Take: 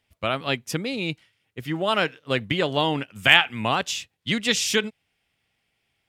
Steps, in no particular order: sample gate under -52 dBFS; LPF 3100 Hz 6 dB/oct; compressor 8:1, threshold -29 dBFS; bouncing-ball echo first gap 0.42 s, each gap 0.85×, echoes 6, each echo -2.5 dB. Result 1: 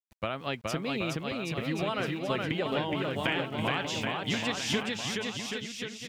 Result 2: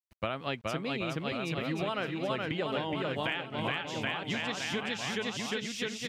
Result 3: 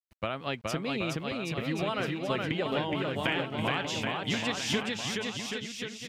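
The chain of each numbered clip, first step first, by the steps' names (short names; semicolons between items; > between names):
LPF > sample gate > compressor > bouncing-ball echo; bouncing-ball echo > sample gate > compressor > LPF; sample gate > LPF > compressor > bouncing-ball echo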